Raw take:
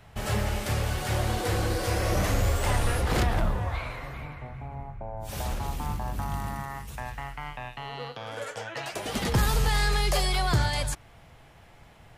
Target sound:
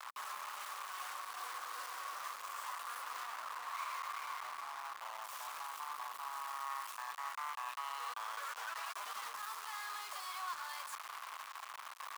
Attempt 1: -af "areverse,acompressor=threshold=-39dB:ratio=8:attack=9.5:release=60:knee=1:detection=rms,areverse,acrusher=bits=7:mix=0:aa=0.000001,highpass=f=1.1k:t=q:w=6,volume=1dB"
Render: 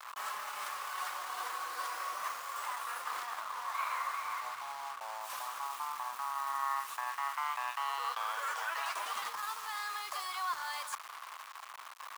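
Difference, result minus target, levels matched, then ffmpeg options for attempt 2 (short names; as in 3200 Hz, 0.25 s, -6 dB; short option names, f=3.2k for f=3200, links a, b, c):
compressor: peak gain reduction -8 dB
-af "areverse,acompressor=threshold=-48dB:ratio=8:attack=9.5:release=60:knee=1:detection=rms,areverse,acrusher=bits=7:mix=0:aa=0.000001,highpass=f=1.1k:t=q:w=6,volume=1dB"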